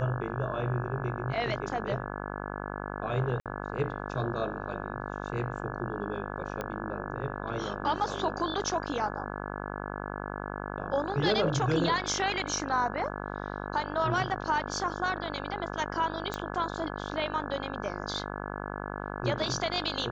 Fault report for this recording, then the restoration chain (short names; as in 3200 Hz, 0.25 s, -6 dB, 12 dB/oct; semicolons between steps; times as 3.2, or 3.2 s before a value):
buzz 50 Hz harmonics 34 -37 dBFS
3.4–3.46 gap 57 ms
6.61 pop -20 dBFS
16.34 pop -18 dBFS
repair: de-click; de-hum 50 Hz, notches 34; interpolate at 3.4, 57 ms